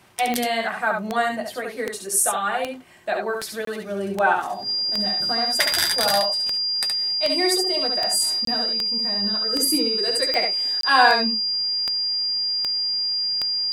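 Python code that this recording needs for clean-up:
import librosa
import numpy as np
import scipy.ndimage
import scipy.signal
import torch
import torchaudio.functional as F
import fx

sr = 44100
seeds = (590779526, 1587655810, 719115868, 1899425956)

y = fx.fix_declick_ar(x, sr, threshold=10.0)
y = fx.notch(y, sr, hz=4800.0, q=30.0)
y = fx.fix_interpolate(y, sr, at_s=(3.65, 8.45, 10.81), length_ms=23.0)
y = fx.fix_echo_inverse(y, sr, delay_ms=70, level_db=-4.5)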